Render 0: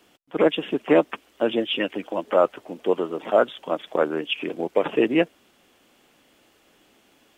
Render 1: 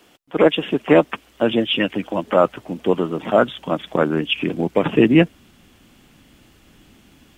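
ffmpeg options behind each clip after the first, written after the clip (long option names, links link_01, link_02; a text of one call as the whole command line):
ffmpeg -i in.wav -af "asubboost=boost=7.5:cutoff=180,volume=5.5dB" out.wav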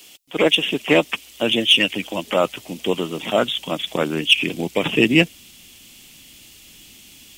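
ffmpeg -i in.wav -af "aexciter=amount=3.5:drive=8.5:freq=2200,volume=-3.5dB" out.wav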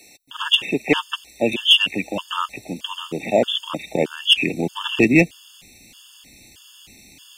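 ffmpeg -i in.wav -filter_complex "[0:a]acrossover=split=9900[link_01][link_02];[link_02]acompressor=threshold=-55dB:ratio=4:attack=1:release=60[link_03];[link_01][link_03]amix=inputs=2:normalize=0,aeval=exprs='clip(val(0),-1,0.398)':channel_layout=same,afftfilt=real='re*gt(sin(2*PI*1.6*pts/sr)*(1-2*mod(floor(b*sr/1024/900),2)),0)':imag='im*gt(sin(2*PI*1.6*pts/sr)*(1-2*mod(floor(b*sr/1024/900),2)),0)':win_size=1024:overlap=0.75,volume=2dB" out.wav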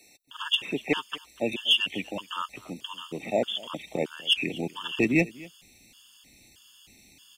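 ffmpeg -i in.wav -af "aecho=1:1:244:0.0841,volume=-8.5dB" out.wav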